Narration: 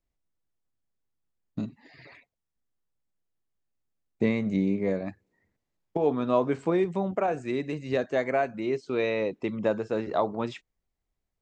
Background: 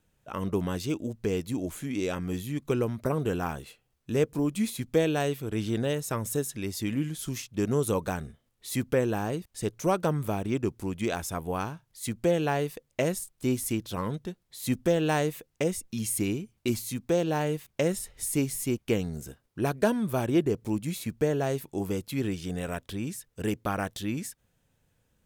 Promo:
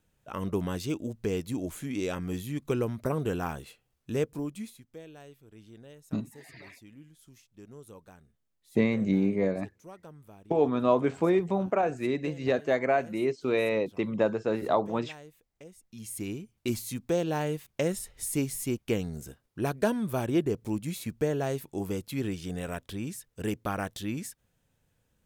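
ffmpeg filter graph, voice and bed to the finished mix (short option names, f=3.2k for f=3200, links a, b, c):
-filter_complex "[0:a]adelay=4550,volume=0.5dB[a];[1:a]volume=18.5dB,afade=t=out:st=4.02:d=0.81:silence=0.0944061,afade=t=in:st=15.76:d=0.97:silence=0.1[b];[a][b]amix=inputs=2:normalize=0"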